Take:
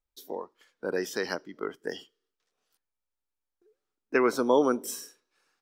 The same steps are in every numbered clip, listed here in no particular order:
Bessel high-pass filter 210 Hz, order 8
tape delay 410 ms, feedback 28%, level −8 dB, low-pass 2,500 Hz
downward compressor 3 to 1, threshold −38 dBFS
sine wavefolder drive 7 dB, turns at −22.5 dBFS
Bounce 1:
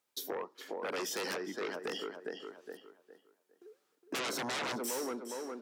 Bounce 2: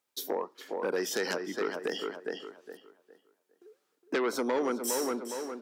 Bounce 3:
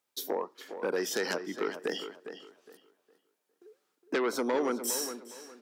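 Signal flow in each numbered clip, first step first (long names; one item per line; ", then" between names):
tape delay, then sine wavefolder, then downward compressor, then Bessel high-pass filter
tape delay, then downward compressor, then sine wavefolder, then Bessel high-pass filter
downward compressor, then sine wavefolder, then tape delay, then Bessel high-pass filter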